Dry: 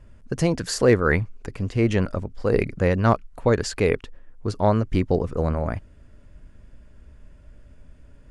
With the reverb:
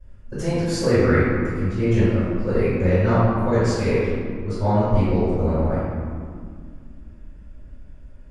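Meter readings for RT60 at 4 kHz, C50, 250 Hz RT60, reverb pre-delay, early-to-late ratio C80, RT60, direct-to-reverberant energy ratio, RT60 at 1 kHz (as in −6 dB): 1.1 s, −4.0 dB, 3.3 s, 3 ms, −1.5 dB, 2.1 s, −18.5 dB, 2.0 s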